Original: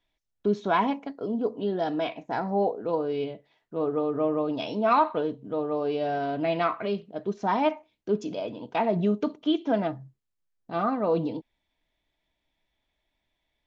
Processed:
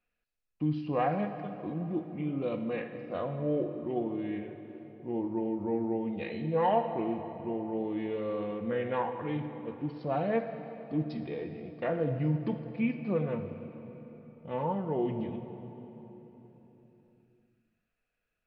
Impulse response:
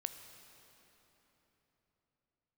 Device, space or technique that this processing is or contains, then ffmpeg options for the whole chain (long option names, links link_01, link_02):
slowed and reverbed: -filter_complex "[0:a]asetrate=32634,aresample=44100[link_01];[1:a]atrim=start_sample=2205[link_02];[link_01][link_02]afir=irnorm=-1:irlink=0,volume=-4dB"